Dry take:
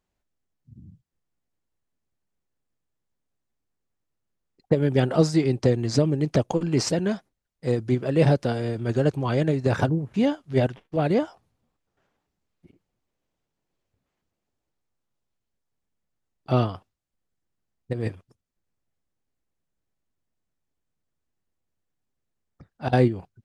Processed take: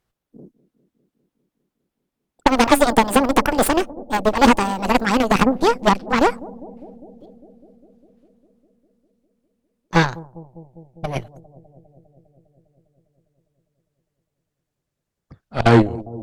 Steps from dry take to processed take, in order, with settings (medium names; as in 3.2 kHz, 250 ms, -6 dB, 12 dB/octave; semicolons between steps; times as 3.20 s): gliding tape speed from 200% -> 89%; Chebyshev shaper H 8 -14 dB, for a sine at -5.5 dBFS; bucket-brigade echo 201 ms, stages 1024, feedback 77%, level -19 dB; trim +5 dB